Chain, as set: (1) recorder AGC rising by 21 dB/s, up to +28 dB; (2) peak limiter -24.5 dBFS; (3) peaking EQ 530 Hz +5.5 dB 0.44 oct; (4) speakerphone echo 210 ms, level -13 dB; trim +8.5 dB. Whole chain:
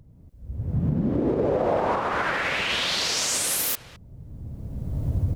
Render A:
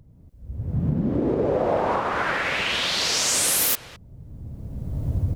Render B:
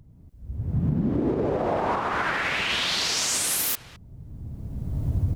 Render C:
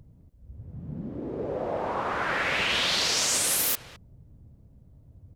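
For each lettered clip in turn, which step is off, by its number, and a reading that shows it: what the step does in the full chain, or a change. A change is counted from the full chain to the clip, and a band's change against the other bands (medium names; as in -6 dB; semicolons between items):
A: 2, crest factor change +2.5 dB; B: 3, 500 Hz band -3.0 dB; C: 1, crest factor change +2.0 dB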